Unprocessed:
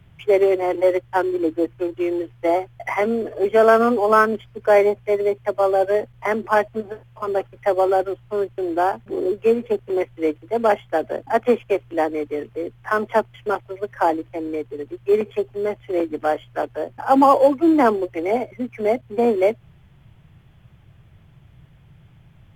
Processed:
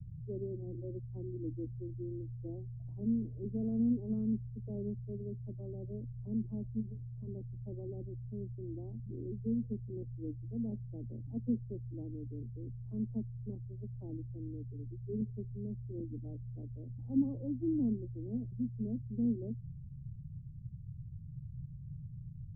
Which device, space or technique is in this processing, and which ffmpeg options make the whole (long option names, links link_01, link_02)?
the neighbour's flat through the wall: -af "lowpass=frequency=180:width=0.5412,lowpass=frequency=180:width=1.3066,equalizer=frequency=130:width_type=o:width=0.77:gain=3.5,volume=2dB"